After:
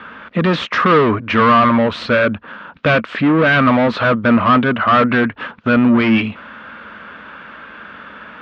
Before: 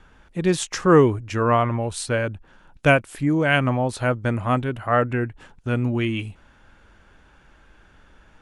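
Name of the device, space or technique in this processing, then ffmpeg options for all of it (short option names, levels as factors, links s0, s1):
overdrive pedal into a guitar cabinet: -filter_complex "[0:a]asplit=2[s0][s1];[s1]highpass=f=720:p=1,volume=39.8,asoftclip=type=tanh:threshold=0.75[s2];[s0][s2]amix=inputs=2:normalize=0,lowpass=f=1800:p=1,volume=0.501,highpass=79,equalizer=f=120:t=q:w=4:g=-6,equalizer=f=220:t=q:w=4:g=8,equalizer=f=360:t=q:w=4:g=-7,equalizer=f=800:t=q:w=4:g=-9,equalizer=f=1200:t=q:w=4:g=5,lowpass=f=3800:w=0.5412,lowpass=f=3800:w=1.3066,volume=0.891"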